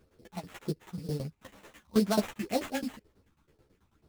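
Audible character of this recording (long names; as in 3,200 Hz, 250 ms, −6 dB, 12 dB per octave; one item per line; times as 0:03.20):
phaser sweep stages 6, 2 Hz, lowest notch 450–3,200 Hz
tremolo saw down 9.2 Hz, depth 90%
aliases and images of a low sample rate 4,900 Hz, jitter 20%
a shimmering, thickened sound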